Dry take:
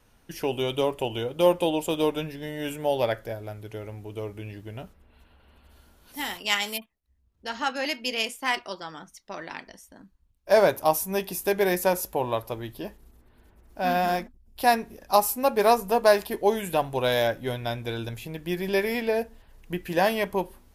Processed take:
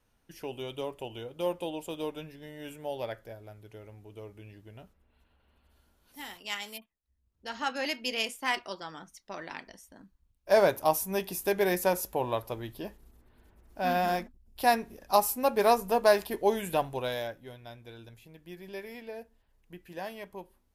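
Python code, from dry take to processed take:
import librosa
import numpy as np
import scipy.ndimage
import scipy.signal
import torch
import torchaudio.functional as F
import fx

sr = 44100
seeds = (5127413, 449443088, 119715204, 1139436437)

y = fx.gain(x, sr, db=fx.line((6.74, -11.0), (7.78, -3.5), (16.79, -3.5), (17.49, -16.5)))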